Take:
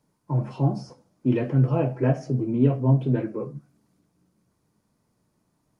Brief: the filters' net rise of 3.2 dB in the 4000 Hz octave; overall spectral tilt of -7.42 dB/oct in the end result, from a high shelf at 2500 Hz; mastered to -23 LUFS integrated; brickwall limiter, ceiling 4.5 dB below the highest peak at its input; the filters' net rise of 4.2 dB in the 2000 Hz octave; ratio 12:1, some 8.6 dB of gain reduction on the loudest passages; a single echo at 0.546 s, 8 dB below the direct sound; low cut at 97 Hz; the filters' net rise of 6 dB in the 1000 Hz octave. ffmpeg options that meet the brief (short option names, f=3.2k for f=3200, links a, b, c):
-af "highpass=97,equalizer=f=1k:t=o:g=8,equalizer=f=2k:t=o:g=3,highshelf=f=2.5k:g=-5,equalizer=f=4k:t=o:g=8,acompressor=threshold=-23dB:ratio=12,alimiter=limit=-20.5dB:level=0:latency=1,aecho=1:1:546:0.398,volume=8.5dB"